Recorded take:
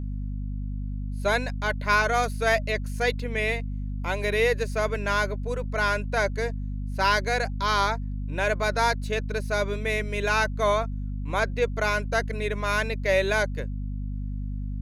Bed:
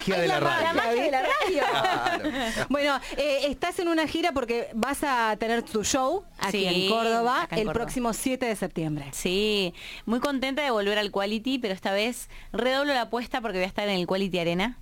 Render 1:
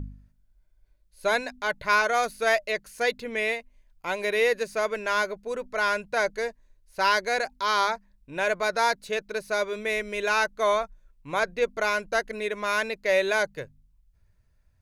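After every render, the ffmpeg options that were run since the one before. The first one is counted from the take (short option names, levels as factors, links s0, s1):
-af "bandreject=f=50:t=h:w=4,bandreject=f=100:t=h:w=4,bandreject=f=150:t=h:w=4,bandreject=f=200:t=h:w=4,bandreject=f=250:t=h:w=4"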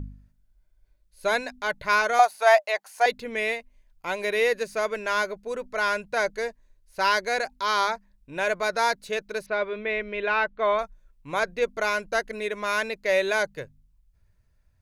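-filter_complex "[0:a]asettb=1/sr,asplit=3[s0][s1][s2];[s0]atrim=end=2.194[s3];[s1]atrim=start=2.19:end=3.06,asetpts=PTS-STARTPTS,afade=t=in:d=0.004:c=qsin,afade=t=out:st=0.866:d=0.004:c=qsin,highpass=f=790:t=q:w=5.9[s4];[s2]atrim=start=3.056[s5];[s3][s4]acrossfade=d=0.004:c1=hsin:c2=qsin[s6];[s6][s5]acrossfade=d=0.004:c1=qsin:c2=hsin,asettb=1/sr,asplit=3[s7][s8][s9];[s7]atrim=end=9.464[s10];[s8]atrim=start=9.46:end=10.79,asetpts=PTS-STARTPTS,afade=t=in:d=0.004:c=qsin,afade=t=out:st=1.326:d=0.004:c=qsin,lowpass=f=3300:w=0.5412,lowpass=f=3300:w=1.3066[s11];[s9]atrim=start=10.786[s12];[s10][s11]acrossfade=d=0.004:c1=hsin:c2=qsin[s13];[s13][s12]acrossfade=d=0.004:c1=qsin:c2=hsin"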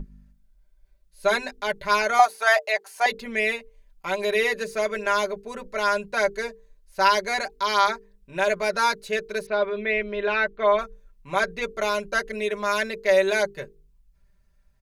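-af "bandreject=f=50:t=h:w=6,bandreject=f=100:t=h:w=6,bandreject=f=150:t=h:w=6,bandreject=f=200:t=h:w=6,bandreject=f=250:t=h:w=6,bandreject=f=300:t=h:w=6,bandreject=f=350:t=h:w=6,bandreject=f=400:t=h:w=6,bandreject=f=450:t=h:w=6,bandreject=f=500:t=h:w=6,aecho=1:1:5.1:0.81"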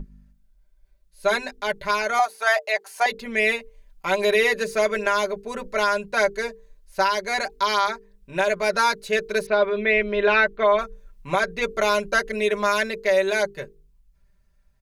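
-af "dynaudnorm=f=330:g=13:m=3.76,alimiter=limit=0.335:level=0:latency=1:release=482"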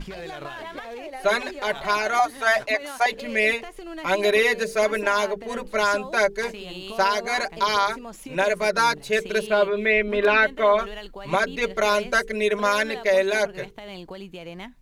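-filter_complex "[1:a]volume=0.251[s0];[0:a][s0]amix=inputs=2:normalize=0"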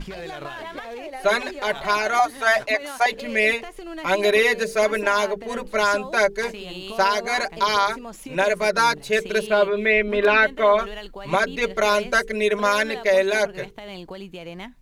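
-af "volume=1.19"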